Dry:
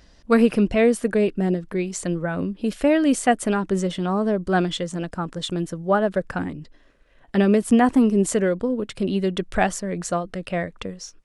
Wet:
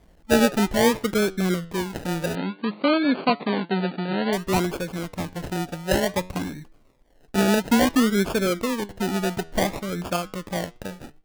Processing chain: decimation with a swept rate 32×, swing 60% 0.57 Hz; flange 0.26 Hz, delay 5.1 ms, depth 7.8 ms, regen +87%; 2.35–4.33 s: brick-wall FIR band-pass 150–4700 Hz; trim +2.5 dB

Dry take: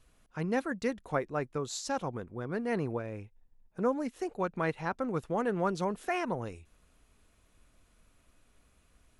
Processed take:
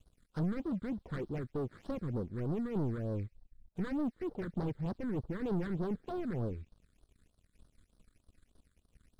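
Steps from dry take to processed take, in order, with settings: self-modulated delay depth 0.76 ms; low-pass that closes with the level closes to 610 Hz, closed at -32.5 dBFS; waveshaping leveller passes 3; on a send: feedback echo behind a high-pass 65 ms, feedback 66%, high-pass 4.3 kHz, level -10 dB; on the sum: saturation -28.5 dBFS, distortion -18 dB; bass shelf 360 Hz +5 dB; phase shifter stages 8, 3.3 Hz, lowest notch 760–2400 Hz; dynamic bell 1.2 kHz, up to +3 dB, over -48 dBFS, Q 0.94; upward expansion 1.5:1, over -40 dBFS; trim -4.5 dB

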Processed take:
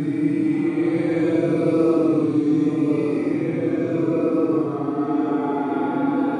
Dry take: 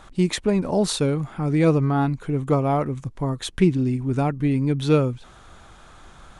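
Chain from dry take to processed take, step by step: high-pass sweep 140 Hz -> 880 Hz, 0.71–3.44 s; two-band feedback delay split 3 kHz, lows 189 ms, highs 102 ms, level -3 dB; Paulstretch 13×, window 0.05 s, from 1.54 s; trim -7 dB

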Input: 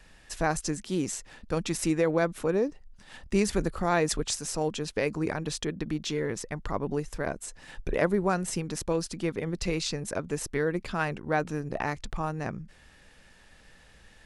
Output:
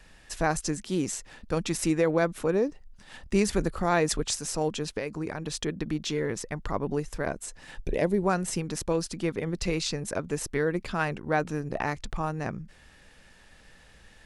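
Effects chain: 4.94–5.54 s: compression 5:1, threshold -30 dBFS, peak gain reduction 7 dB; 7.78–8.23 s: peaking EQ 1.3 kHz -14 dB 0.81 oct; trim +1 dB

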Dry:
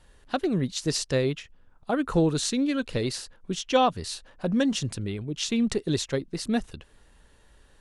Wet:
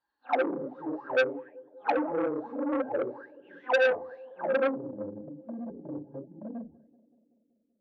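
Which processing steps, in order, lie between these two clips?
phase randomisation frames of 200 ms; bass shelf 370 Hz +7 dB; in parallel at -0.5 dB: compressor with a negative ratio -23 dBFS, ratio -0.5; on the sum: low-pass sweep 1.1 kHz -> 190 Hz, 4.40–5.07 s; overload inside the chain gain 11.5 dB; auto-wah 520–4800 Hz, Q 16, down, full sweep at -13.5 dBFS; small resonant body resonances 300/850/1600 Hz, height 15 dB, ringing for 60 ms; on a send: tape echo 191 ms, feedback 78%, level -21.5 dB, low-pass 1 kHz; on the sum: transformer saturation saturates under 1.7 kHz; trim +2 dB

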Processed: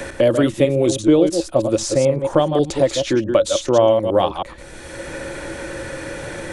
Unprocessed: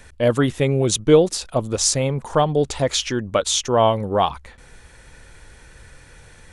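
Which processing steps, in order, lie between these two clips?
chunks repeated in reverse 108 ms, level -7.5 dB; small resonant body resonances 330/550 Hz, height 15 dB, ringing for 75 ms; three bands compressed up and down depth 70%; trim -3 dB

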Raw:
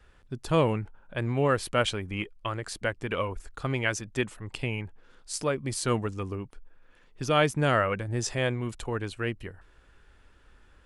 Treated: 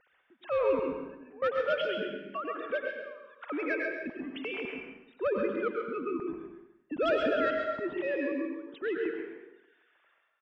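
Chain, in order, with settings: formants replaced by sine waves; bass shelf 280 Hz +10 dB; in parallel at -2 dB: compression, threshold -36 dBFS, peak gain reduction 18.5 dB; on the sum: trance gate "x.xxx..xx" 71 bpm -24 dB; saturation -14 dBFS, distortion -19 dB; delay 141 ms -6 dB; plate-style reverb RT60 0.94 s, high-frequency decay 0.85×, pre-delay 90 ms, DRR 2 dB; speed mistake 24 fps film run at 25 fps; trim -7 dB

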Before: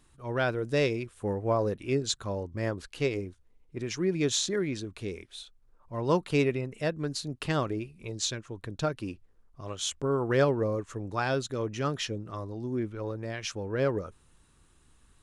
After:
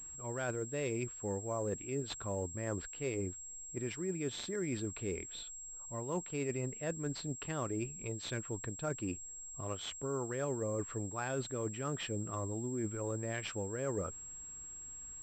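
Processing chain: reverse; compression 10:1, threshold -35 dBFS, peak gain reduction 16.5 dB; reverse; class-D stage that switches slowly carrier 7.6 kHz; trim +1 dB

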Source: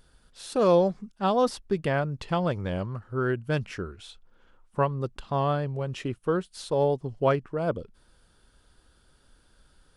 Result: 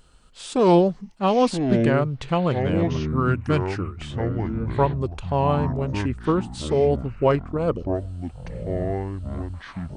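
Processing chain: formant shift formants -2 st; ever faster or slower copies 698 ms, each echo -7 st, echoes 3, each echo -6 dB; trim +4.5 dB

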